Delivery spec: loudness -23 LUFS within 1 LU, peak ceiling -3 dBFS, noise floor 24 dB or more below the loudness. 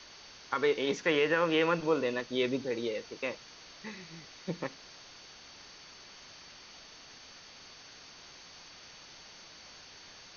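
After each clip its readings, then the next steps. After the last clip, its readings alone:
steady tone 4.5 kHz; tone level -57 dBFS; noise floor -53 dBFS; noise floor target -56 dBFS; loudness -31.5 LUFS; peak level -15.0 dBFS; loudness target -23.0 LUFS
-> band-stop 4.5 kHz, Q 30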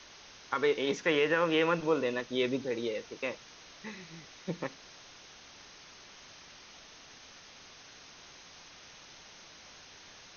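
steady tone not found; noise floor -54 dBFS; noise floor target -56 dBFS
-> noise reduction 6 dB, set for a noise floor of -54 dBFS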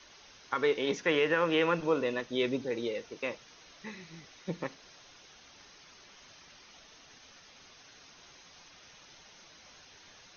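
noise floor -57 dBFS; loudness -31.0 LUFS; peak level -15.0 dBFS; loudness target -23.0 LUFS
-> trim +8 dB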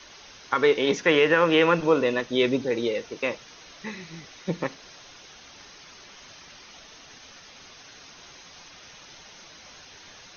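loudness -23.0 LUFS; peak level -7.0 dBFS; noise floor -49 dBFS

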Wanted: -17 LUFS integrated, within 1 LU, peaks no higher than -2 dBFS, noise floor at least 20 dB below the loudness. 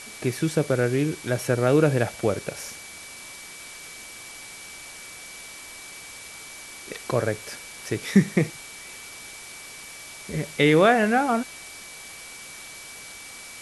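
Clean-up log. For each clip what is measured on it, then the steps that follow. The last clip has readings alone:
steady tone 2.3 kHz; tone level -44 dBFS; noise floor -42 dBFS; noise floor target -44 dBFS; loudness -23.5 LUFS; peak level -4.5 dBFS; loudness target -17.0 LUFS
-> band-stop 2.3 kHz, Q 30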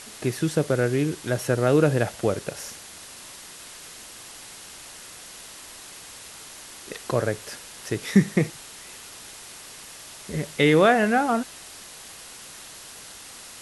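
steady tone not found; noise floor -43 dBFS; noise floor target -44 dBFS
-> noise reduction 6 dB, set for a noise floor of -43 dBFS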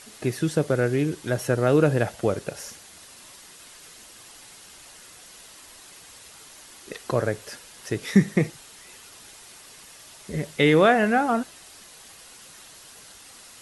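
noise floor -48 dBFS; loudness -23.5 LUFS; peak level -4.5 dBFS; loudness target -17.0 LUFS
-> trim +6.5 dB; peak limiter -2 dBFS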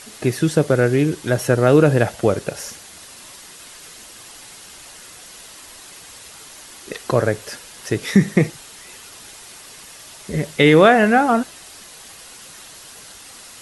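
loudness -17.0 LUFS; peak level -2.0 dBFS; noise floor -41 dBFS

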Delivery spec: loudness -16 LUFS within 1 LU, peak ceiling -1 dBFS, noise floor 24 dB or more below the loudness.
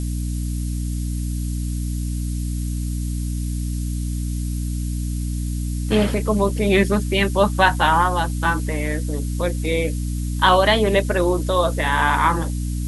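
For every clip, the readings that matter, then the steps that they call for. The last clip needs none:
hum 60 Hz; highest harmonic 300 Hz; hum level -22 dBFS; noise floor -25 dBFS; noise floor target -46 dBFS; loudness -21.5 LUFS; peak level -1.0 dBFS; loudness target -16.0 LUFS
-> hum notches 60/120/180/240/300 Hz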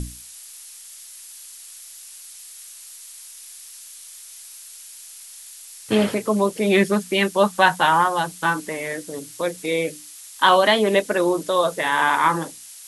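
hum not found; noise floor -42 dBFS; noise floor target -44 dBFS
-> noise print and reduce 6 dB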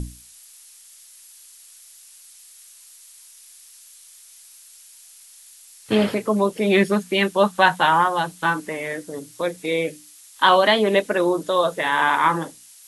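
noise floor -48 dBFS; loudness -20.0 LUFS; peak level -1.5 dBFS; loudness target -16.0 LUFS
-> trim +4 dB; peak limiter -1 dBFS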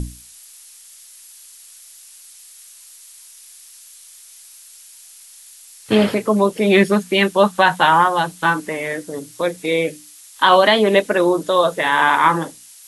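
loudness -16.5 LUFS; peak level -1.0 dBFS; noise floor -44 dBFS

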